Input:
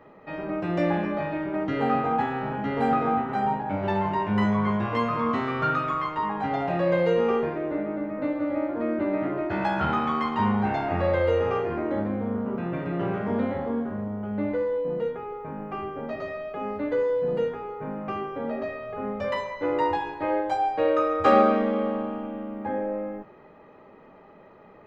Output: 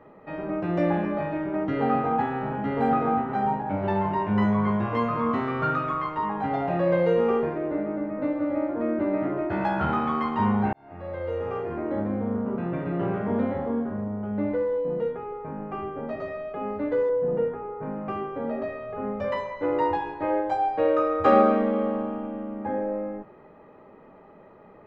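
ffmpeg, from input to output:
-filter_complex "[0:a]asettb=1/sr,asplit=3[s0][s1][s2];[s0]atrim=end=17.094[s3];[s1]atrim=start=17.09:end=17.83,asetpts=PTS-STARTPTS,afade=t=in:d=0.004:c=qsin,afade=t=out:st=0.736:d=0.004:c=qsin,lowpass=1900[s4];[s2]atrim=start=17.826[s5];[s3][s4]acrossfade=d=0.004:c1=hsin:c2=qsin[s6];[s6][s5]acrossfade=d=0.004:c1=qsin:c2=hsin,asplit=2[s7][s8];[s7]atrim=end=10.73,asetpts=PTS-STARTPTS,afade=t=out:st=10.726:d=0.004:c=hsin[s9];[s8]atrim=start=10.73,asetpts=PTS-STARTPTS,afade=t=in:d=1.45[s10];[s9][s10]concat=n=2:v=0:a=1,highshelf=f=2600:g=-10,volume=1.12"

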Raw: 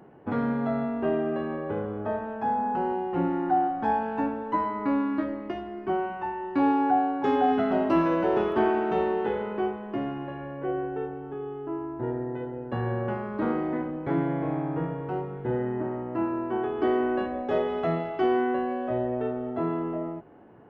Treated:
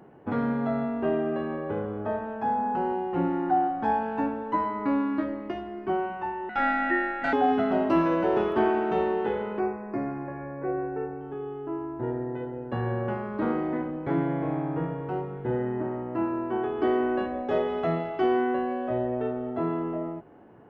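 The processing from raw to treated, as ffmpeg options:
-filter_complex "[0:a]asettb=1/sr,asplit=3[s0][s1][s2];[s0]atrim=end=6.494[s3];[s1]atrim=start=6.49:end=7.33,asetpts=PTS-STARTPTS,afade=t=in:d=0.004:c=qsin,afade=t=out:st=0.836:d=0.004:c=qsin,aeval=exprs='val(0)*sin(2*PI*1100*n/s)':c=same[s4];[s2]atrim=start=7.326[s5];[s3][s4]acrossfade=d=0.004:c1=hsin:c2=qsin[s6];[s6][s5]acrossfade=d=0.004:c1=qsin:c2=hsin,asettb=1/sr,asplit=3[s7][s8][s9];[s7]atrim=end=9.594[s10];[s8]atrim=start=9.59:end=11.21,asetpts=PTS-STARTPTS,afade=t=in:d=0.004:c=qsin,afade=t=out:st=1.616:d=0.004:c=qsin,asuperstop=centerf=3400:order=20:qfactor=2.1[s11];[s9]atrim=start=11.206[s12];[s10][s11]acrossfade=d=0.004:c1=hsin:c2=qsin[s13];[s13][s12]acrossfade=d=0.004:c1=qsin:c2=hsin"

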